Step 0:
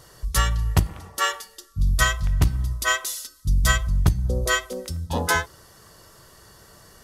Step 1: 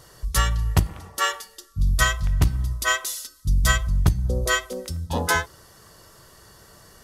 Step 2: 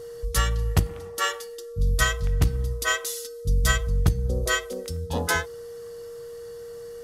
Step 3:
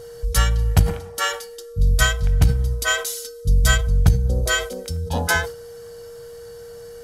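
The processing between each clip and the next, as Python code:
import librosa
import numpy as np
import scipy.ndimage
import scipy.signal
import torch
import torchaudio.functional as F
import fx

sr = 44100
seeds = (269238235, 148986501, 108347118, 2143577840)

y1 = x
y2 = y1 + 10.0 ** (-34.0 / 20.0) * np.sin(2.0 * np.pi * 470.0 * np.arange(len(y1)) / sr)
y2 = fx.peak_eq(y2, sr, hz=980.0, db=-4.0, octaves=0.35)
y2 = y2 * 10.0 ** (-2.0 / 20.0)
y3 = y2 + 0.41 * np.pad(y2, (int(1.3 * sr / 1000.0), 0))[:len(y2)]
y3 = fx.sustainer(y3, sr, db_per_s=110.0)
y3 = y3 * 10.0 ** (3.0 / 20.0)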